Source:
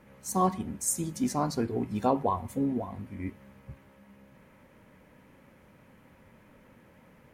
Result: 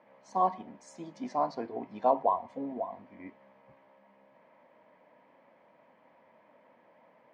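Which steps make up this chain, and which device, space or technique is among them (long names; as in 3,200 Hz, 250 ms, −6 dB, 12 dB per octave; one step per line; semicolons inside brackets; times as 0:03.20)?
phone earpiece (loudspeaker in its box 340–4,100 Hz, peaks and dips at 390 Hz −4 dB, 660 Hz +10 dB, 970 Hz +6 dB, 1,400 Hz −6 dB, 2,700 Hz −5 dB, 3,800 Hz −5 dB)
level −3.5 dB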